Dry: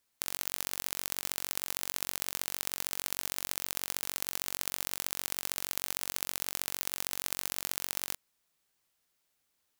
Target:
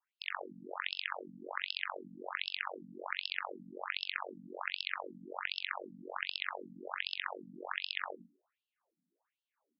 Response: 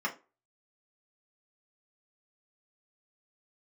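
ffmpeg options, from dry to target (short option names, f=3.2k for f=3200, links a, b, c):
-filter_complex "[0:a]asplit=2[a][b];[1:a]atrim=start_sample=2205,adelay=96[c];[b][c]afir=irnorm=-1:irlink=0,volume=-15dB[d];[a][d]amix=inputs=2:normalize=0,adynamicequalizer=threshold=0.002:dfrequency=2500:dqfactor=1.2:tfrequency=2500:tqfactor=1.2:attack=5:release=100:ratio=0.375:range=2.5:mode=boostabove:tftype=bell,adynamicsmooth=sensitivity=1.5:basefreq=980,afftfilt=real='re*between(b*sr/1024,200*pow(3800/200,0.5+0.5*sin(2*PI*1.3*pts/sr))/1.41,200*pow(3800/200,0.5+0.5*sin(2*PI*1.3*pts/sr))*1.41)':imag='im*between(b*sr/1024,200*pow(3800/200,0.5+0.5*sin(2*PI*1.3*pts/sr))/1.41,200*pow(3800/200,0.5+0.5*sin(2*PI*1.3*pts/sr))*1.41)':win_size=1024:overlap=0.75,volume=13dB"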